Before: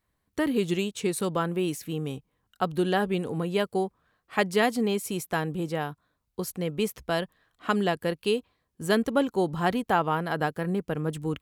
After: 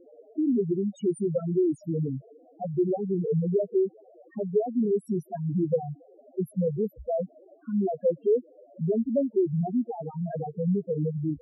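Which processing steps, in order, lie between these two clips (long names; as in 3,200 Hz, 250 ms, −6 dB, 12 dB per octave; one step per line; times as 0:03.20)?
noise in a band 240–830 Hz −57 dBFS
downward compressor 20 to 1, threshold −28 dBFS, peak gain reduction 11.5 dB
hard clipping −27.5 dBFS, distortion −14 dB
spectral peaks only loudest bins 2
low shelf with overshoot 750 Hz +9.5 dB, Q 3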